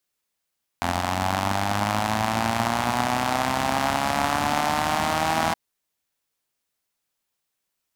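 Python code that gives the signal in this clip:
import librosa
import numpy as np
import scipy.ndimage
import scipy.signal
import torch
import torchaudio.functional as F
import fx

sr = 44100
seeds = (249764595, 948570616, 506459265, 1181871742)

y = fx.engine_four_rev(sr, seeds[0], length_s=4.72, rpm=2600, resonances_hz=(100.0, 220.0, 750.0), end_rpm=4900)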